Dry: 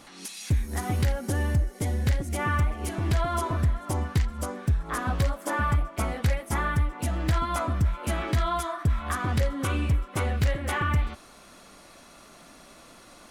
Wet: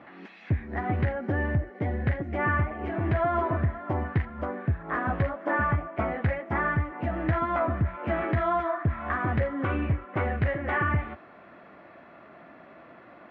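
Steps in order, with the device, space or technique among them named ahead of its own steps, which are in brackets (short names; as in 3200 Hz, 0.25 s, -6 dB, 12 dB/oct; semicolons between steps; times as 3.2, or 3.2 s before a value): bass cabinet (speaker cabinet 80–2300 Hz, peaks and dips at 340 Hz +4 dB, 660 Hz +6 dB, 1800 Hz +5 dB)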